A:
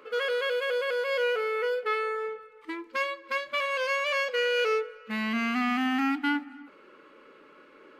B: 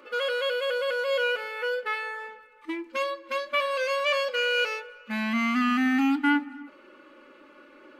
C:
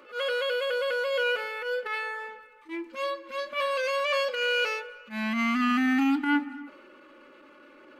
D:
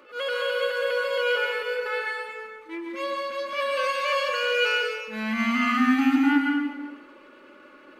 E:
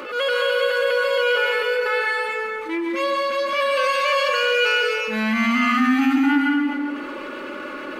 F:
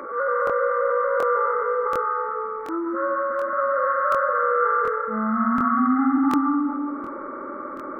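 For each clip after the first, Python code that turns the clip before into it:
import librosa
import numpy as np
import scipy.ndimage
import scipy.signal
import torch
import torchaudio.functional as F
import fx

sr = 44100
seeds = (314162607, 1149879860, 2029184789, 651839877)

y1 = x + 0.8 * np.pad(x, (int(3.4 * sr / 1000.0), 0))[:len(x)]
y2 = fx.transient(y1, sr, attack_db=-12, sustain_db=2)
y3 = fx.rev_plate(y2, sr, seeds[0], rt60_s=1.1, hf_ratio=0.9, predelay_ms=105, drr_db=0.0)
y4 = fx.env_flatten(y3, sr, amount_pct=50)
y4 = F.gain(torch.from_numpy(y4), 1.5).numpy()
y5 = fx.freq_compress(y4, sr, knee_hz=1100.0, ratio=4.0)
y5 = fx.buffer_crackle(y5, sr, first_s=0.45, period_s=0.73, block=1024, kind='repeat')
y5 = F.gain(torch.from_numpy(y5), -2.0).numpy()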